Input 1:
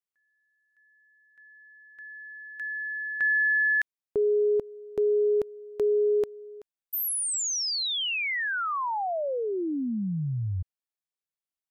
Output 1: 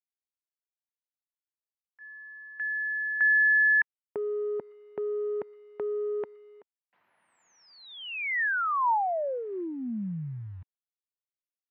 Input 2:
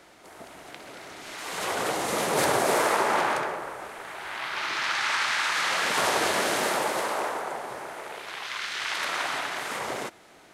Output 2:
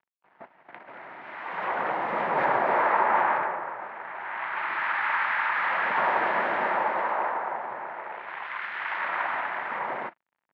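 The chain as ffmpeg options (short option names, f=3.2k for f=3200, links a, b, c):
-filter_complex "[0:a]agate=range=-14dB:threshold=-43dB:ratio=16:release=79:detection=rms,asplit=2[a][b];[b]asoftclip=type=tanh:threshold=-19dB,volume=-5.5dB[c];[a][c]amix=inputs=2:normalize=0,acrusher=bits=8:mix=0:aa=0.000001,highpass=190,equalizer=f=290:t=q:w=4:g=-6,equalizer=f=430:t=q:w=4:g=-7,equalizer=f=930:t=q:w=4:g=6,equalizer=f=1.8k:t=q:w=4:g=3,lowpass=f=2.2k:w=0.5412,lowpass=f=2.2k:w=1.3066,volume=-3dB" -ar 32000 -c:a libmp3lame -b:a 80k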